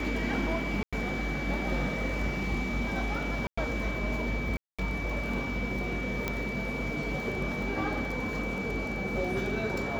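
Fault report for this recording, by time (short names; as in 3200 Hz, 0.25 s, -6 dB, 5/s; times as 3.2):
crackle 14/s -35 dBFS
tone 2300 Hz -36 dBFS
0.83–0.93 gap 96 ms
3.47–3.58 gap 0.105 s
4.57–4.79 gap 0.216 s
6.28 pop -15 dBFS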